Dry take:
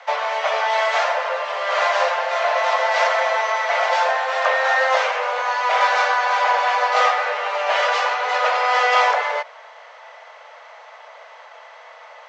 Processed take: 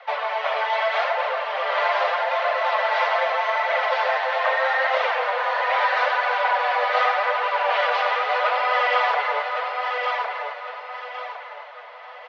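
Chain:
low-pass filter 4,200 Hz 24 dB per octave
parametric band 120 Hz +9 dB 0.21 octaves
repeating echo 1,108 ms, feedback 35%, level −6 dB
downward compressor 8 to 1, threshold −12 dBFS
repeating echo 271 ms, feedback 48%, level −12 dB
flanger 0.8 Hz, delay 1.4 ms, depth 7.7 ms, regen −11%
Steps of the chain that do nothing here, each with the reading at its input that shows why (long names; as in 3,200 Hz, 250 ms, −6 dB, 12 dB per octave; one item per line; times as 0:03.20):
parametric band 120 Hz: nothing at its input below 400 Hz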